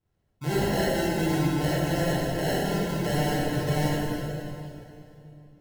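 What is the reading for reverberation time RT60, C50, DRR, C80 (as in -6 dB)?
2.8 s, -4.5 dB, -8.0 dB, -2.5 dB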